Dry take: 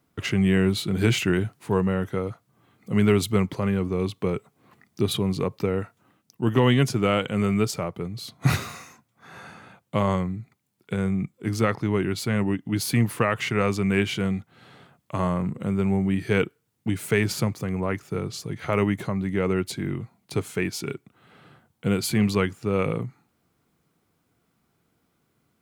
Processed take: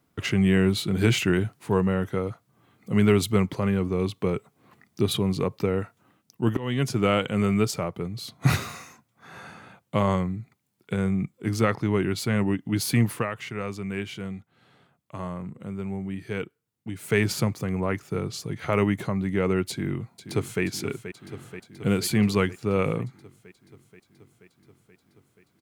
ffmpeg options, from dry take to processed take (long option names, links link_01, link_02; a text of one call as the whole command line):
ffmpeg -i in.wav -filter_complex "[0:a]asplit=2[link_01][link_02];[link_02]afade=type=in:start_time=19.7:duration=0.01,afade=type=out:start_time=20.63:duration=0.01,aecho=0:1:480|960|1440|1920|2400|2880|3360|3840|4320|4800|5280|5760:0.281838|0.211379|0.158534|0.118901|0.0891754|0.0668815|0.0501612|0.0376209|0.0282157|0.0211617|0.0158713|0.0119035[link_03];[link_01][link_03]amix=inputs=2:normalize=0,asplit=4[link_04][link_05][link_06][link_07];[link_04]atrim=end=6.57,asetpts=PTS-STARTPTS,afade=type=out:start_time=6.566:duration=0.004:curve=hsin:silence=0.0749894[link_08];[link_05]atrim=start=6.57:end=13.38,asetpts=PTS-STARTPTS,afade=type=in:duration=0.43:silence=0.0749894,afade=type=out:start_time=6.54:duration=0.27:curve=qua:silence=0.354813[link_09];[link_06]atrim=start=13.38:end=16.89,asetpts=PTS-STARTPTS,volume=-9dB[link_10];[link_07]atrim=start=16.89,asetpts=PTS-STARTPTS,afade=type=in:duration=0.27:curve=qua:silence=0.354813[link_11];[link_08][link_09][link_10][link_11]concat=n=4:v=0:a=1" out.wav